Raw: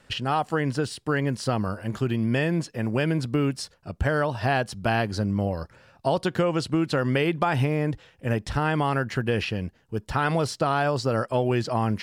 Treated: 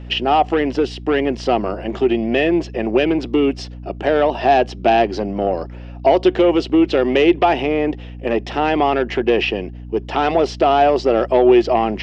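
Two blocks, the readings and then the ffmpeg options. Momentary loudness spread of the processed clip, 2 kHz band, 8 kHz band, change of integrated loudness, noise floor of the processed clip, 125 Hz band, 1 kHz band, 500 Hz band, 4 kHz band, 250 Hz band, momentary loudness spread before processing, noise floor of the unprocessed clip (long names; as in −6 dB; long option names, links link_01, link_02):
8 LU, +4.5 dB, can't be measured, +8.5 dB, −33 dBFS, −5.0 dB, +10.0 dB, +11.5 dB, +8.0 dB, +8.5 dB, 6 LU, −60 dBFS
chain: -af "aeval=exprs='0.398*sin(PI/2*2.51*val(0)/0.398)':channel_layout=same,highpass=frequency=250:width=0.5412,highpass=frequency=250:width=1.3066,equalizer=frequency=370:width_type=q:width=4:gain=9,equalizer=frequency=710:width_type=q:width=4:gain=7,equalizer=frequency=1100:width_type=q:width=4:gain=-3,equalizer=frequency=1500:width_type=q:width=4:gain=-8,equalizer=frequency=2800:width_type=q:width=4:gain=4,equalizer=frequency=4300:width_type=q:width=4:gain=-8,lowpass=frequency=4900:width=0.5412,lowpass=frequency=4900:width=1.3066,aeval=exprs='val(0)+0.0355*(sin(2*PI*60*n/s)+sin(2*PI*2*60*n/s)/2+sin(2*PI*3*60*n/s)/3+sin(2*PI*4*60*n/s)/4+sin(2*PI*5*60*n/s)/5)':channel_layout=same,volume=-2.5dB"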